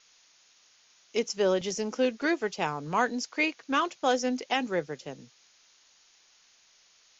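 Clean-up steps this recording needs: noise print and reduce 11 dB

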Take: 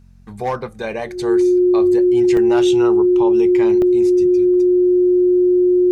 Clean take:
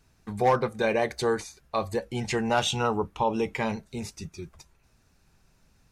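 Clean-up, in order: de-hum 45 Hz, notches 5; band-stop 360 Hz, Q 30; interpolate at 2.37/3.82 s, 1.7 ms

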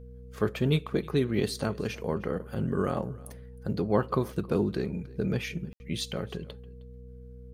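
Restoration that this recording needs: de-hum 62.5 Hz, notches 4; band-stop 470 Hz, Q 30; room tone fill 5.73–5.80 s; inverse comb 312 ms -22.5 dB

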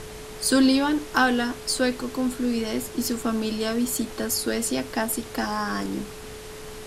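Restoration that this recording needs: clip repair -9.5 dBFS; band-stop 430 Hz, Q 30; noise print and reduce 30 dB

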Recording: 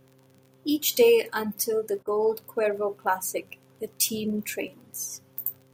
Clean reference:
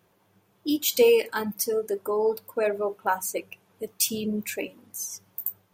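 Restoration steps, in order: de-click; de-hum 131.7 Hz, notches 4; interpolate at 2.03 s, 41 ms

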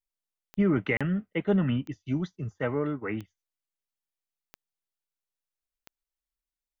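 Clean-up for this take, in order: de-click; interpolate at 0.97 s, 36 ms

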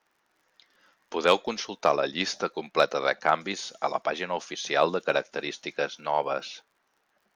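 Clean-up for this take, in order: clip repair -8.5 dBFS; de-click

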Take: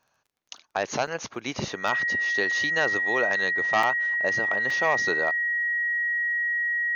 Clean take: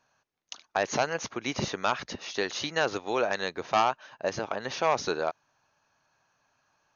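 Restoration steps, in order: de-click; band-stop 1.9 kHz, Q 30; interpolate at 1.07/1.88/3.83/4.70 s, 3.3 ms

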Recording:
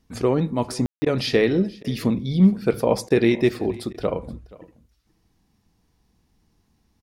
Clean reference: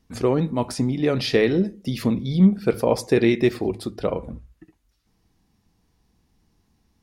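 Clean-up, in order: room tone fill 0.86–1.02 s; interpolate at 1.05/1.83/3.09/3.93 s, 12 ms; inverse comb 477 ms -21.5 dB

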